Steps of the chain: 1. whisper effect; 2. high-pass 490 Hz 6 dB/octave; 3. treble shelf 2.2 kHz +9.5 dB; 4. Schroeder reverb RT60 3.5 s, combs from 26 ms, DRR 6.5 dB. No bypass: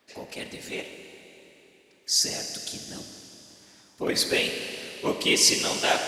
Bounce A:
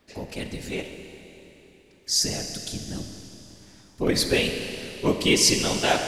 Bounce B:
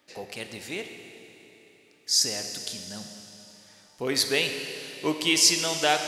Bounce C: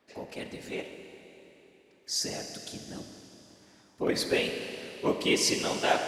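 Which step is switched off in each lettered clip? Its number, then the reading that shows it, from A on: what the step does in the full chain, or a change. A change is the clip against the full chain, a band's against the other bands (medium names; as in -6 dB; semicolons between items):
2, 125 Hz band +10.5 dB; 1, crest factor change -1.5 dB; 3, 8 kHz band -8.0 dB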